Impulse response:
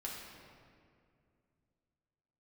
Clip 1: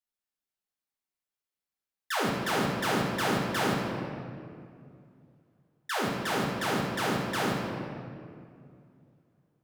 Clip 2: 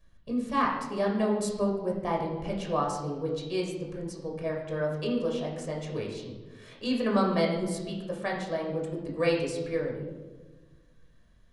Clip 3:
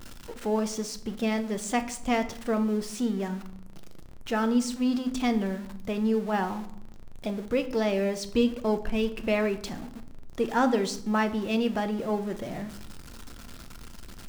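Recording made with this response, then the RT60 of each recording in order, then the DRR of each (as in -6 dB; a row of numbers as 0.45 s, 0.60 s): 1; 2.3 s, 1.3 s, 0.75 s; -4.0 dB, -1.0 dB, 8.5 dB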